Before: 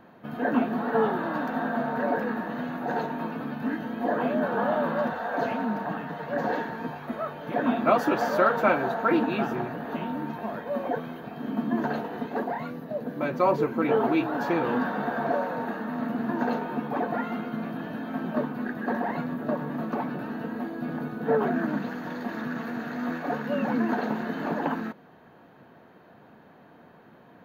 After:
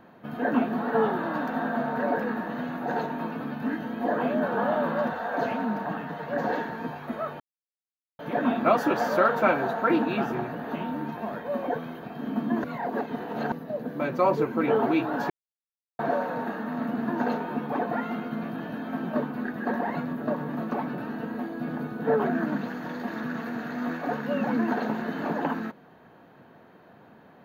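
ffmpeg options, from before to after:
ffmpeg -i in.wav -filter_complex "[0:a]asplit=6[link_01][link_02][link_03][link_04][link_05][link_06];[link_01]atrim=end=7.4,asetpts=PTS-STARTPTS,afade=type=out:start_time=7.396:duration=0.004:curve=hsin,apad=pad_dur=0.79[link_07];[link_02]atrim=start=7.4:end=11.852,asetpts=PTS-STARTPTS,afade=type=in:duration=0.004:curve=hsin[link_08];[link_03]atrim=start=11.848:end=12.732,asetpts=PTS-STARTPTS,areverse[link_09];[link_04]atrim=start=12.728:end=14.51,asetpts=PTS-STARTPTS,afade=type=out:start_time=1.778:duration=0.004:curve=hsin[link_10];[link_05]atrim=start=14.51:end=15.2,asetpts=PTS-STARTPTS,volume=0[link_11];[link_06]atrim=start=15.2,asetpts=PTS-STARTPTS,afade=type=in:duration=0.004:curve=hsin[link_12];[link_07][link_08]concat=n=2:v=0:a=1[link_13];[link_13][link_09]acrossfade=duration=0.004:curve1=hsin:curve2=hsin[link_14];[link_10][link_11][link_12]concat=n=3:v=0:a=1[link_15];[link_14][link_15]acrossfade=duration=0.004:curve1=hsin:curve2=hsin" out.wav

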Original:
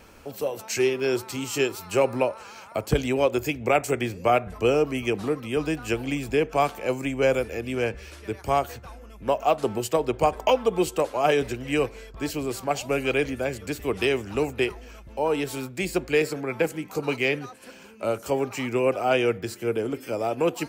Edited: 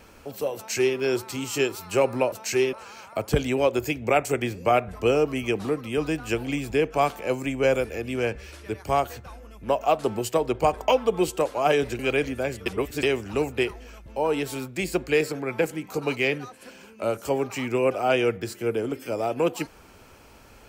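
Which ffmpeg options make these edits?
ffmpeg -i in.wav -filter_complex "[0:a]asplit=6[link_01][link_02][link_03][link_04][link_05][link_06];[link_01]atrim=end=2.322[link_07];[link_02]atrim=start=0.558:end=0.972[link_08];[link_03]atrim=start=2.318:end=11.582[link_09];[link_04]atrim=start=12.998:end=13.672[link_10];[link_05]atrim=start=13.668:end=14.042,asetpts=PTS-STARTPTS,areverse[link_11];[link_06]atrim=start=14.038[link_12];[link_07][link_08]acrossfade=duration=0.004:curve1=hsin:curve2=hsin[link_13];[link_13][link_09]acrossfade=duration=0.004:curve1=hsin:curve2=hsin[link_14];[link_14][link_10]acrossfade=duration=0.004:curve1=hsin:curve2=hsin[link_15];[link_15][link_11]acrossfade=duration=0.004:curve1=hsin:curve2=hsin[link_16];[link_16][link_12]acrossfade=duration=0.004:curve1=hsin:curve2=hsin" out.wav

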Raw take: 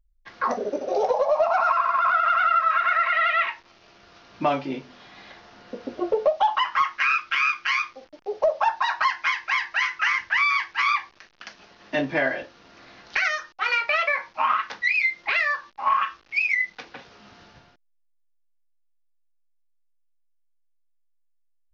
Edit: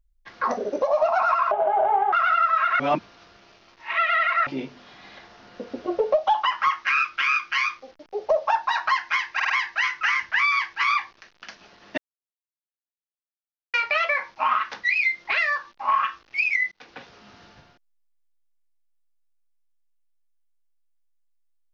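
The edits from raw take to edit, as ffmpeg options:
ffmpeg -i in.wav -filter_complex "[0:a]asplit=12[link_01][link_02][link_03][link_04][link_05][link_06][link_07][link_08][link_09][link_10][link_11][link_12];[link_01]atrim=end=0.822[link_13];[link_02]atrim=start=1.198:end=1.894[link_14];[link_03]atrim=start=1.89:end=2.26,asetpts=PTS-STARTPTS,asetrate=26460,aresample=44100[link_15];[link_04]atrim=start=2.256:end=2.932[link_16];[link_05]atrim=start=2.928:end=4.602,asetpts=PTS-STARTPTS,areverse[link_17];[link_06]atrim=start=4.598:end=9.532[link_18];[link_07]atrim=start=9.478:end=9.532[link_19];[link_08]atrim=start=9.478:end=9.532[link_20];[link_09]atrim=start=9.478:end=11.96,asetpts=PTS-STARTPTS,afade=type=out:start_time=2.478:duration=0.004:curve=hsin[link_21];[link_10]atrim=start=11.96:end=13.72,asetpts=PTS-STARTPTS,volume=0[link_22];[link_11]atrim=start=13.72:end=16.7,asetpts=PTS-STARTPTS,afade=type=in:duration=0.004:curve=hsin,afade=type=out:start_time=2.976:duration=0.004:curve=hsin[link_23];[link_12]atrim=start=16.7,asetpts=PTS-STARTPTS,afade=type=in:duration=0.25[link_24];[link_13][link_14]acrossfade=duration=0.004:curve1=hsin:curve2=hsin[link_25];[link_25][link_15]acrossfade=duration=0.004:curve1=hsin:curve2=hsin[link_26];[link_26][link_16]acrossfade=duration=0.004:curve1=hsin:curve2=hsin[link_27];[link_27][link_17]acrossfade=duration=0.004:curve1=hsin:curve2=hsin[link_28];[link_28][link_18]acrossfade=duration=0.004:curve1=hsin:curve2=hsin[link_29];[link_29][link_19]acrossfade=duration=0.004:curve1=hsin:curve2=hsin[link_30];[link_30][link_20]acrossfade=duration=0.004:curve1=hsin:curve2=hsin[link_31];[link_21][link_22][link_23][link_24]concat=n=4:v=0:a=1[link_32];[link_31][link_32]acrossfade=duration=0.004:curve1=hsin:curve2=hsin" out.wav

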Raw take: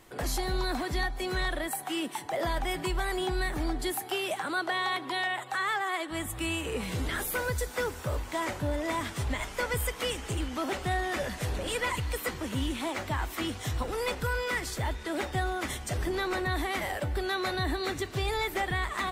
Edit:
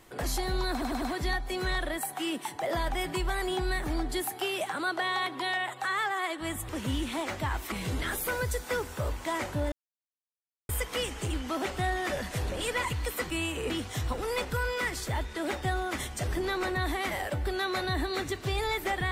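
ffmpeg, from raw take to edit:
ffmpeg -i in.wav -filter_complex "[0:a]asplit=10[link_01][link_02][link_03][link_04][link_05][link_06][link_07][link_08][link_09][link_10];[link_01]atrim=end=0.822[link_11];[link_02]atrim=start=0.718:end=0.822[link_12];[link_03]atrim=start=0.718:end=0.822[link_13];[link_04]atrim=start=0.718:end=6.392[link_14];[link_05]atrim=start=12.368:end=13.402[link_15];[link_06]atrim=start=6.788:end=8.79,asetpts=PTS-STARTPTS,afade=type=out:start_time=1.998:duration=0.004:curve=hsin[link_16];[link_07]atrim=start=8.79:end=9.76,asetpts=PTS-STARTPTS,volume=0[link_17];[link_08]atrim=start=9.76:end=12.372,asetpts=PTS-STARTPTS,afade=type=in:duration=0.004:curve=hsin[link_18];[link_09]atrim=start=6.388:end=6.792[link_19];[link_10]atrim=start=13.398[link_20];[link_11][link_12]acrossfade=duration=0.004:curve1=hsin:curve2=hsin[link_21];[link_21][link_13]acrossfade=duration=0.004:curve1=hsin:curve2=hsin[link_22];[link_22][link_14]acrossfade=duration=0.004:curve1=hsin:curve2=hsin[link_23];[link_23][link_15]acrossfade=duration=0.004:curve1=hsin:curve2=hsin[link_24];[link_16][link_17][link_18]concat=n=3:v=0:a=1[link_25];[link_24][link_25]acrossfade=duration=0.004:curve1=hsin:curve2=hsin[link_26];[link_26][link_19]acrossfade=duration=0.004:curve1=hsin:curve2=hsin[link_27];[link_27][link_20]acrossfade=duration=0.004:curve1=hsin:curve2=hsin" out.wav

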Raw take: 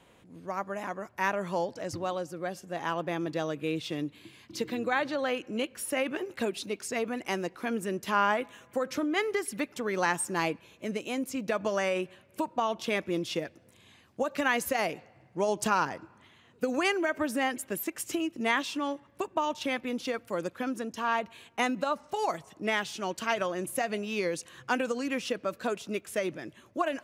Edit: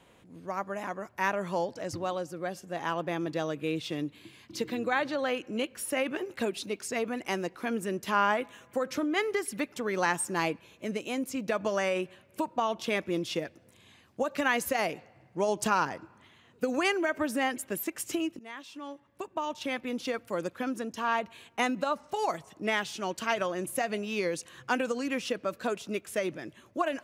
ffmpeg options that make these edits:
ffmpeg -i in.wav -filter_complex "[0:a]asplit=2[link_01][link_02];[link_01]atrim=end=18.39,asetpts=PTS-STARTPTS,afade=type=out:start_time=18.386:duration=0.004:curve=hsin:silence=0.0794328[link_03];[link_02]atrim=start=18.39,asetpts=PTS-STARTPTS,afade=type=in:duration=1.69:silence=0.0794328[link_04];[link_03][link_04]concat=n=2:v=0:a=1" out.wav

